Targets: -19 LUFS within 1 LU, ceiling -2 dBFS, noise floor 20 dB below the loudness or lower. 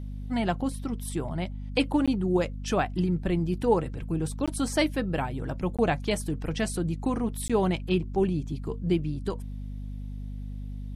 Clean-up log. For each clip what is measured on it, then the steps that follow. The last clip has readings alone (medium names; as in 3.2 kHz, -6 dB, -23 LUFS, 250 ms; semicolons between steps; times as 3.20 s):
dropouts 4; longest dropout 16 ms; hum 50 Hz; highest harmonic 250 Hz; hum level -33 dBFS; loudness -28.5 LUFS; peak level -11.5 dBFS; loudness target -19.0 LUFS
-> interpolate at 2.06/4.46/5.77/7.48 s, 16 ms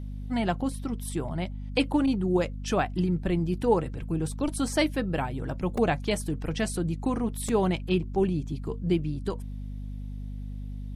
dropouts 0; hum 50 Hz; highest harmonic 250 Hz; hum level -33 dBFS
-> hum notches 50/100/150/200/250 Hz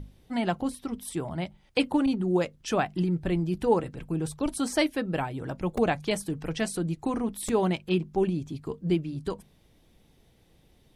hum not found; loudness -29.0 LUFS; peak level -11.0 dBFS; loudness target -19.0 LUFS
-> trim +10 dB; peak limiter -2 dBFS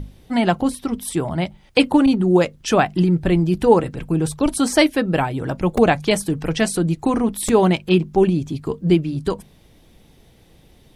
loudness -19.0 LUFS; peak level -2.0 dBFS; noise floor -52 dBFS